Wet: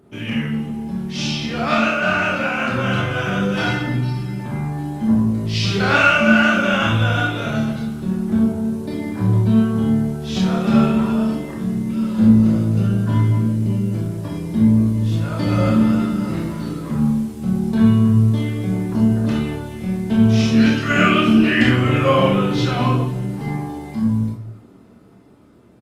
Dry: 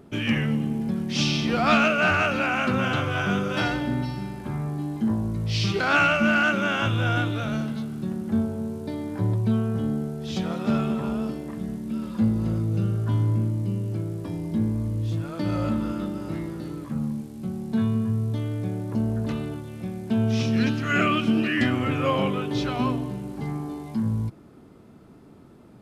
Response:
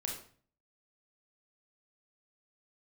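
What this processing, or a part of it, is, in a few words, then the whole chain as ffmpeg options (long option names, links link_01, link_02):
far-field microphone of a smart speaker: -filter_complex "[0:a]asplit=2[link_01][link_02];[link_02]adelay=26,volume=-5.5dB[link_03];[link_01][link_03]amix=inputs=2:normalize=0[link_04];[1:a]atrim=start_sample=2205[link_05];[link_04][link_05]afir=irnorm=-1:irlink=0,highpass=frequency=80:poles=1,dynaudnorm=framelen=740:gausssize=7:maxgain=11.5dB,volume=-1dB" -ar 48000 -c:a libopus -b:a 32k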